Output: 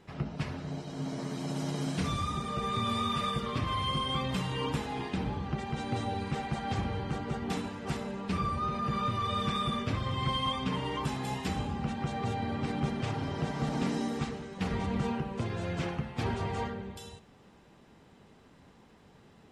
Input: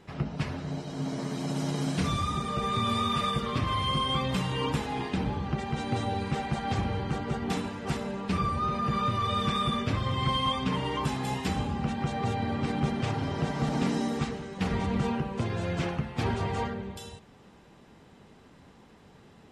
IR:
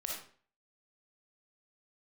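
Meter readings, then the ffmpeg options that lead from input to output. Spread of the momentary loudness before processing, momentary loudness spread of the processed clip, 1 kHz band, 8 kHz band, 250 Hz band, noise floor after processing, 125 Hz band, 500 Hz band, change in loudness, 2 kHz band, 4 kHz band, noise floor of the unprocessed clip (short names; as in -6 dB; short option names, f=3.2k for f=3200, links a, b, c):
6 LU, 6 LU, -3.5 dB, -3.0 dB, -3.5 dB, -58 dBFS, -3.5 dB, -3.5 dB, -3.5 dB, -3.0 dB, -3.0 dB, -55 dBFS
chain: -filter_complex "[0:a]asplit=2[a][b];[1:a]atrim=start_sample=2205[c];[b][c]afir=irnorm=-1:irlink=0,volume=-14dB[d];[a][d]amix=inputs=2:normalize=0,volume=-4.5dB"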